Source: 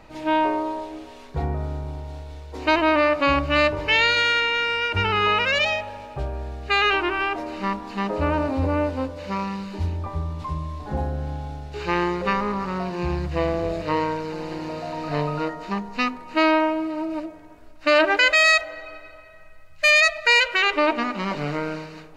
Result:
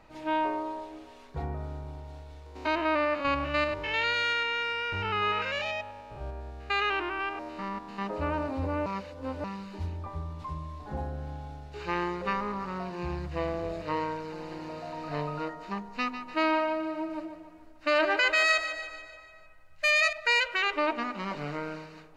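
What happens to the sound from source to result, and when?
2.46–8.02 stepped spectrum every 0.1 s
8.86–9.44 reverse
15.97–20.13 feedback echo 0.148 s, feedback 52%, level -10.5 dB
whole clip: bell 1200 Hz +2.5 dB 1.5 oct; gain -9 dB

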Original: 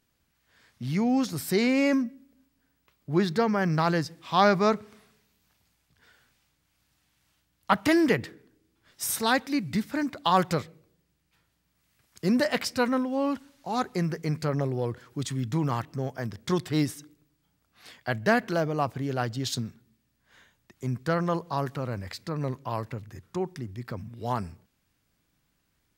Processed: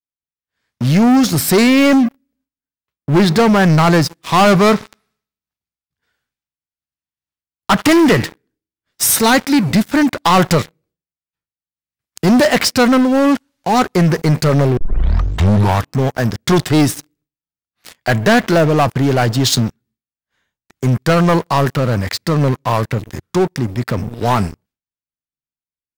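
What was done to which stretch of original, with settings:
4.52–8.24 thin delay 75 ms, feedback 63%, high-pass 1800 Hz, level -17.5 dB
14.77 tape start 1.18 s
whole clip: expander -59 dBFS; sample leveller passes 5

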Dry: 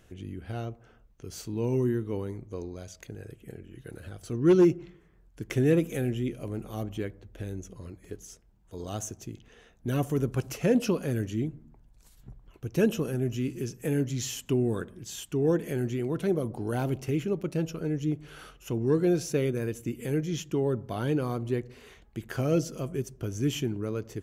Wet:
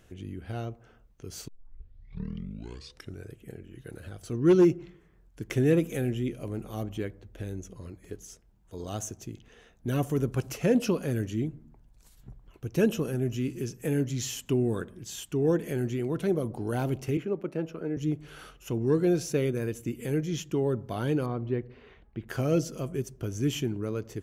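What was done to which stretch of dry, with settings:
1.48 tape start 1.84 s
17.17–17.97 three-band isolator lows -12 dB, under 200 Hz, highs -14 dB, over 2500 Hz
21.26–22.28 air absorption 320 m

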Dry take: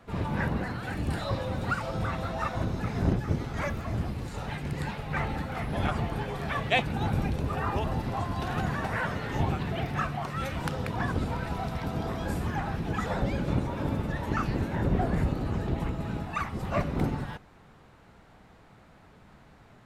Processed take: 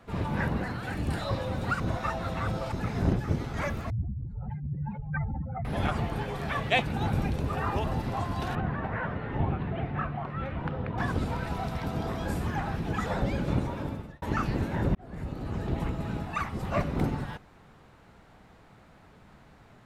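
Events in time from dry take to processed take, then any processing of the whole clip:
1.8–2.72 reverse
3.9–5.65 spectral contrast raised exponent 2.9
8.55–10.98 air absorption 500 m
13.65–14.22 fade out
14.95–15.78 fade in

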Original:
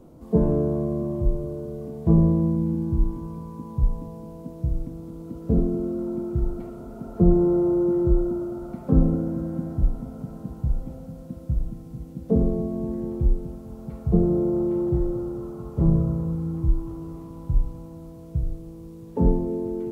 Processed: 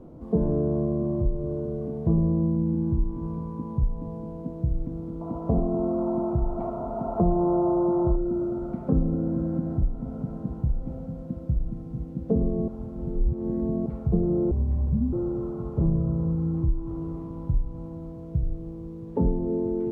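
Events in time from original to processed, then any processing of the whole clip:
5.21–8.16 band shelf 850 Hz +14 dB 1.2 oct
12.68–13.86 reverse
14.51–15.13 frequency shift -280 Hz
whole clip: LPF 1100 Hz 6 dB/oct; compressor 2.5:1, threshold -26 dBFS; gain +3.5 dB

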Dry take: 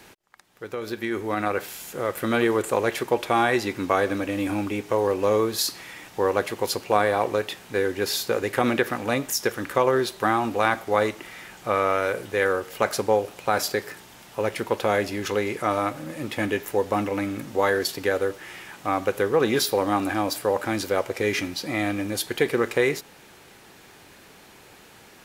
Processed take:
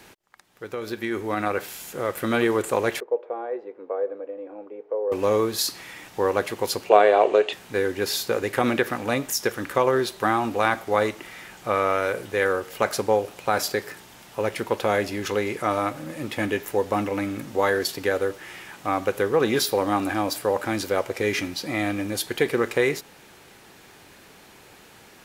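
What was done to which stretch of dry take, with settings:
3–5.12 ladder band-pass 520 Hz, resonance 70%
6.89–7.53 speaker cabinet 300–7400 Hz, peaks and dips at 410 Hz +10 dB, 650 Hz +10 dB, 2800 Hz +8 dB, 5400 Hz -9 dB

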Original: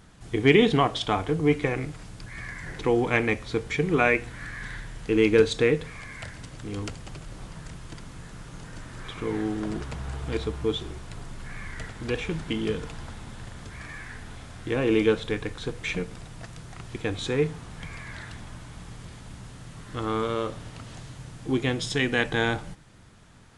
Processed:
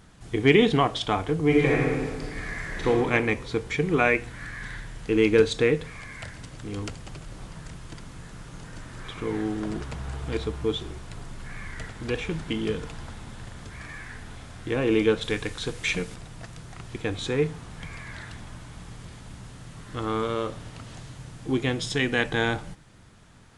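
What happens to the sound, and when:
1.46–2.88 reverb throw, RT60 1.6 s, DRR -3 dB
15.21–16.15 high shelf 2300 Hz +8 dB

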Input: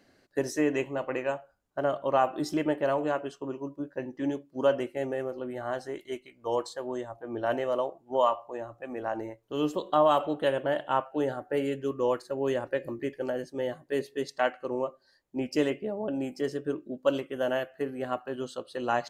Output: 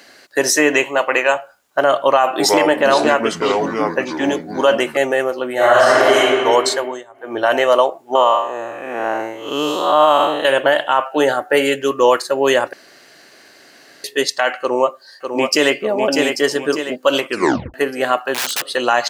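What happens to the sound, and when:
0.83–1.36 low shelf 220 Hz -9 dB
2.05–4.97 echoes that change speed 0.339 s, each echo -5 st, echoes 2, each echo -6 dB
5.54–6.15 reverb throw, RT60 2.3 s, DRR -9.5 dB
6.77–7.4 dip -19 dB, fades 0.27 s
8.15–10.45 time blur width 0.213 s
12.73–14.04 room tone
14.6–15.75 echo throw 0.6 s, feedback 45%, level -6 dB
17.29 tape stop 0.45 s
18.34–18.74 wrapped overs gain 37 dB
whole clip: HPF 1400 Hz 6 dB/oct; maximiser +25.5 dB; gain -1.5 dB

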